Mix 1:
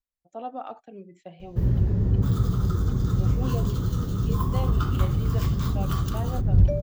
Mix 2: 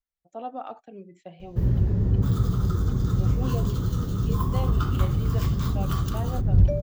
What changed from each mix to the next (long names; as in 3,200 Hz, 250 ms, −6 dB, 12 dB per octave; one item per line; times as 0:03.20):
nothing changed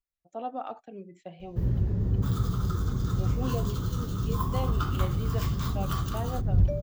first sound −4.5 dB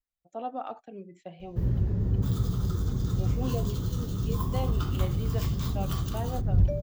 second sound: add parametric band 1,300 Hz −8 dB 0.93 octaves